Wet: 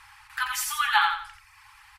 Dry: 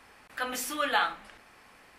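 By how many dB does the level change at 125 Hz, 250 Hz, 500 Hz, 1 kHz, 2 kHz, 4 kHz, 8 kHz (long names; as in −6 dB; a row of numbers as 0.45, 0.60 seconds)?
can't be measured, below −40 dB, below −40 dB, +5.5 dB, +6.0 dB, +5.5 dB, +6.0 dB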